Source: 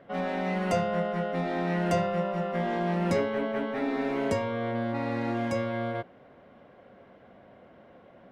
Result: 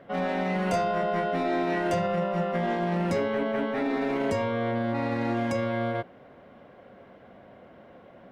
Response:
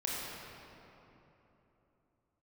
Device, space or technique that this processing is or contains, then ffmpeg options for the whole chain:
clipper into limiter: -filter_complex "[0:a]asettb=1/sr,asplit=3[s0][s1][s2];[s0]atrim=end=0.674[s3];[s1]atrim=start=0.67:end=1.94,asetpts=PTS-STARTPTS,afade=t=in:d=0.004:c=qsin,afade=t=out:st=1.266:d=0.004:c=qsin,asplit=2[s4][s5];[s5]adelay=26,volume=0.75[s6];[s4][s6]amix=inputs=2:normalize=0,atrim=end_sample=56007[s7];[s2]atrim=start=1.936[s8];[s3][s7]acrossfade=d=0.004:c1=hsin:c2=qsin[s9];[s9][s8]acrossfade=d=0.004:c1=qsin:c2=hsin,asoftclip=type=hard:threshold=0.126,alimiter=limit=0.0794:level=0:latency=1:release=22,volume=1.41"

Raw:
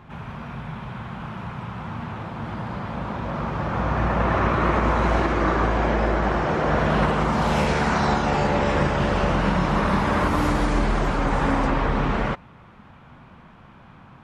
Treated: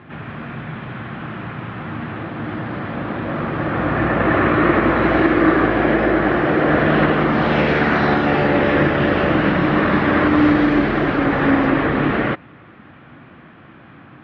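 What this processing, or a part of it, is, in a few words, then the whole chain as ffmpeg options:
guitar cabinet: -af "highpass=110,equalizer=f=190:t=q:w=4:g=-4,equalizer=f=310:t=q:w=4:g=9,equalizer=f=930:t=q:w=4:g=-8,equalizer=f=1800:t=q:w=4:g=5,lowpass=f=3600:w=0.5412,lowpass=f=3600:w=1.3066,volume=1.88"

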